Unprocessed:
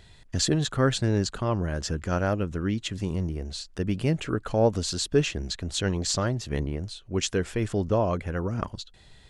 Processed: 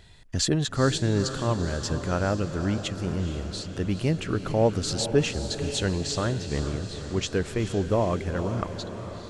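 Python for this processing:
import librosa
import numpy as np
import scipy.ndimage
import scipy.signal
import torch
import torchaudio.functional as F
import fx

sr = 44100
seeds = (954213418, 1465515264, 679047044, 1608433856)

y = fx.high_shelf(x, sr, hz=7600.0, db=-12.0, at=(5.91, 7.33))
y = fx.echo_diffused(y, sr, ms=456, feedback_pct=62, wet_db=-10)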